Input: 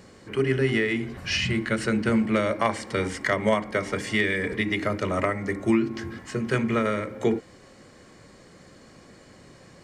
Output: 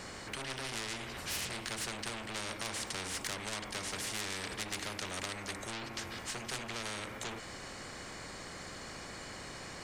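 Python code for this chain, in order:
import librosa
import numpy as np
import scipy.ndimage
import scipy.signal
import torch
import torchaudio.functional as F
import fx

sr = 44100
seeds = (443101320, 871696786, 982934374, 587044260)

y = fx.low_shelf(x, sr, hz=170.0, db=10.5)
y = 10.0 ** (-22.0 / 20.0) * np.tanh(y / 10.0 ** (-22.0 / 20.0))
y = fx.spectral_comp(y, sr, ratio=4.0)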